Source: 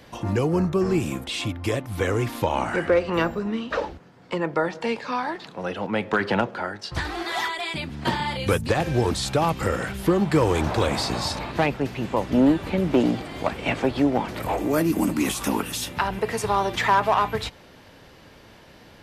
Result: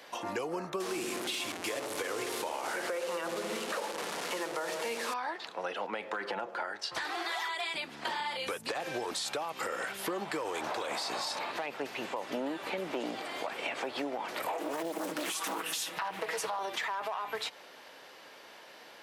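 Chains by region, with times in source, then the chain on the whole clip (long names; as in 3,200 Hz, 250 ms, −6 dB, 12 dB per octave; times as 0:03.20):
0:00.80–0:05.14: linear delta modulator 64 kbit/s, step −26.5 dBFS + delay with a low-pass on its return 60 ms, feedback 81%, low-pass 520 Hz, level −6.5 dB
0:06.10–0:06.60: parametric band 3,600 Hz −5.5 dB 2.1 octaves + comb filter 5.8 ms, depth 37%
0:14.54–0:16.59: comb filter 6.2 ms, depth 91% + highs frequency-modulated by the lows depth 0.88 ms
whole clip: high-pass filter 530 Hz 12 dB per octave; brickwall limiter −20 dBFS; downward compressor, threshold −32 dBFS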